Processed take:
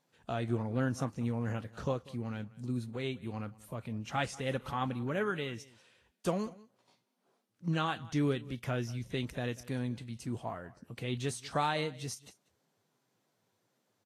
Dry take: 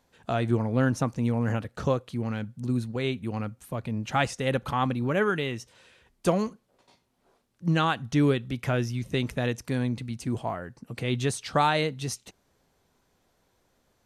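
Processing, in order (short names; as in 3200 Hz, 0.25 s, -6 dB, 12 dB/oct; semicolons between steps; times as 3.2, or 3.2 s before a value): echo 0.19 s -21 dB; gain -8 dB; Vorbis 32 kbps 44100 Hz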